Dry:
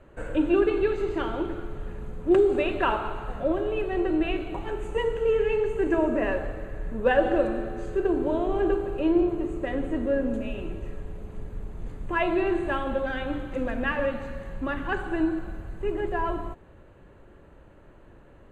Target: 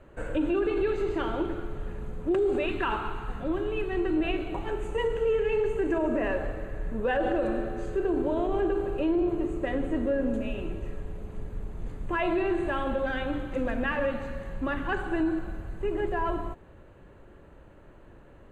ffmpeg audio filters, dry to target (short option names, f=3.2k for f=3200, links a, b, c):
-filter_complex "[0:a]asettb=1/sr,asplit=3[a][b][c];[a]atrim=end=2.664[d];[b]atrim=start=2.66:end=4.17,asetpts=PTS-STARTPTS,afade=t=in:d=0.004:c=qsin,afade=t=out:st=1.506:d=0.004:c=qsin,equalizer=f=600:t=o:w=0.48:g=-14[e];[c]atrim=start=4.166[f];[d][e]acrossfade=d=0.004:c1=hsin:c2=qsin[g];[g][f]acrossfade=d=0.004:c1=qsin:c2=hsin,alimiter=limit=-19dB:level=0:latency=1:release=32"